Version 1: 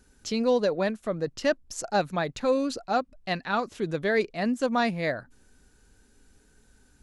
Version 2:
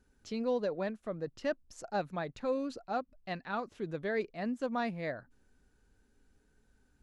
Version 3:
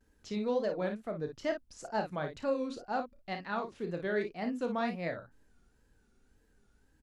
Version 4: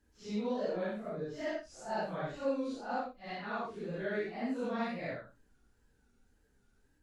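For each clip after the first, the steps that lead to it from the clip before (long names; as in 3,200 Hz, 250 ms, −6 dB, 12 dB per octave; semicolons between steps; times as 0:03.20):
high-shelf EQ 3,900 Hz −10 dB; level −8.5 dB
ambience of single reflections 31 ms −9 dB, 55 ms −8.5 dB; tape wow and flutter 120 cents
random phases in long frames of 200 ms; level −2 dB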